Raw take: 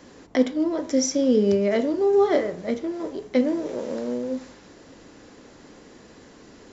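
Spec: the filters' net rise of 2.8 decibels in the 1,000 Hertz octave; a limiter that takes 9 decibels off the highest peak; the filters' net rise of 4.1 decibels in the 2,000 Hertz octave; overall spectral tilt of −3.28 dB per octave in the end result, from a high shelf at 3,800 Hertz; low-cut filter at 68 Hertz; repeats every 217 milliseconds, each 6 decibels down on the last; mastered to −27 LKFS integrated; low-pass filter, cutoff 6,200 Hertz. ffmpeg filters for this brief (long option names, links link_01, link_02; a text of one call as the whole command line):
ffmpeg -i in.wav -af "highpass=68,lowpass=6200,equalizer=frequency=1000:width_type=o:gain=3.5,equalizer=frequency=2000:width_type=o:gain=5,highshelf=frequency=3800:gain=-6,alimiter=limit=-16dB:level=0:latency=1,aecho=1:1:217|434|651|868|1085|1302:0.501|0.251|0.125|0.0626|0.0313|0.0157,volume=-2dB" out.wav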